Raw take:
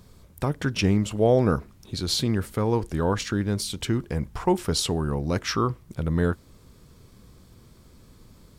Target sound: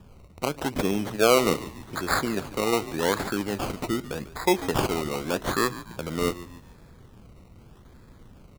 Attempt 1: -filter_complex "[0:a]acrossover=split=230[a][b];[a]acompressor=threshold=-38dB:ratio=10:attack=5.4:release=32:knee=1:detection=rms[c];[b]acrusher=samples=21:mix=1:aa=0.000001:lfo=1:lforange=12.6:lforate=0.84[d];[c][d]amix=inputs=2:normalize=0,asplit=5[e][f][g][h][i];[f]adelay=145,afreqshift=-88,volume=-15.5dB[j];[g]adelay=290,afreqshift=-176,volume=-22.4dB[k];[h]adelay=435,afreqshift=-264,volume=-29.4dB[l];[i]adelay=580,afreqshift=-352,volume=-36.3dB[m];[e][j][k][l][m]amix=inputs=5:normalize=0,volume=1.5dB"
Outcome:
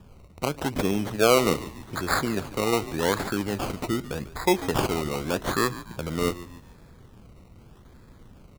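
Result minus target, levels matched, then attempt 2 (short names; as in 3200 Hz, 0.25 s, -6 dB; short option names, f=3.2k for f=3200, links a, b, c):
compressor: peak gain reduction -6.5 dB
-filter_complex "[0:a]acrossover=split=230[a][b];[a]acompressor=threshold=-45dB:ratio=10:attack=5.4:release=32:knee=1:detection=rms[c];[b]acrusher=samples=21:mix=1:aa=0.000001:lfo=1:lforange=12.6:lforate=0.84[d];[c][d]amix=inputs=2:normalize=0,asplit=5[e][f][g][h][i];[f]adelay=145,afreqshift=-88,volume=-15.5dB[j];[g]adelay=290,afreqshift=-176,volume=-22.4dB[k];[h]adelay=435,afreqshift=-264,volume=-29.4dB[l];[i]adelay=580,afreqshift=-352,volume=-36.3dB[m];[e][j][k][l][m]amix=inputs=5:normalize=0,volume=1.5dB"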